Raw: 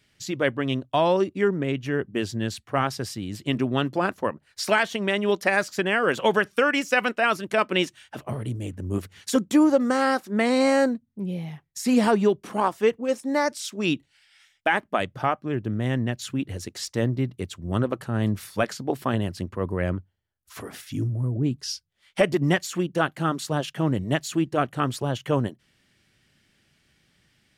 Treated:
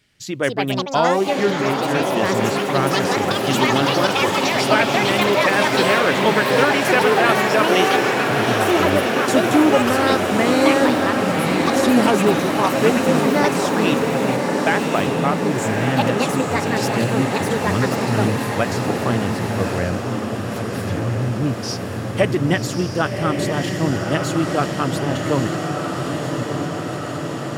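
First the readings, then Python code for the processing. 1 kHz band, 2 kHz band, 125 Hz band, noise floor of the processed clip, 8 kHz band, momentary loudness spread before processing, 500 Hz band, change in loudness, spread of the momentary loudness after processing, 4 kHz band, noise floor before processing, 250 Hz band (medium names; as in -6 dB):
+8.5 dB, +7.5 dB, +6.0 dB, -26 dBFS, +8.5 dB, 11 LU, +7.0 dB, +6.5 dB, 9 LU, +9.5 dB, -67 dBFS, +6.5 dB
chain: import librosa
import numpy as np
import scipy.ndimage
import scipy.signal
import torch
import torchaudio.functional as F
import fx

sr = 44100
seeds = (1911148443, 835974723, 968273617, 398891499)

y = fx.echo_diffused(x, sr, ms=1143, feedback_pct=74, wet_db=-3.5)
y = fx.echo_pitch(y, sr, ms=287, semitones=6, count=2, db_per_echo=-3.0)
y = F.gain(torch.from_numpy(y), 2.5).numpy()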